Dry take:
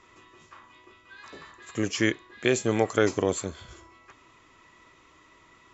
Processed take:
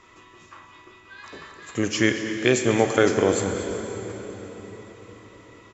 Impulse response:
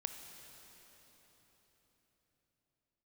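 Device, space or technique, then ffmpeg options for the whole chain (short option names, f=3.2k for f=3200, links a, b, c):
cave: -filter_complex "[0:a]aecho=1:1:231:0.178[a];[1:a]atrim=start_sample=2205[b];[a][b]afir=irnorm=-1:irlink=0,volume=6dB"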